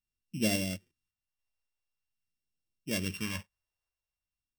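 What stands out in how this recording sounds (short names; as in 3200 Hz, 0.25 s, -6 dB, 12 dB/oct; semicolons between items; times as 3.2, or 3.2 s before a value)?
a buzz of ramps at a fixed pitch in blocks of 16 samples; random-step tremolo 3.6 Hz; phasing stages 2, 0.46 Hz, lowest notch 220–1100 Hz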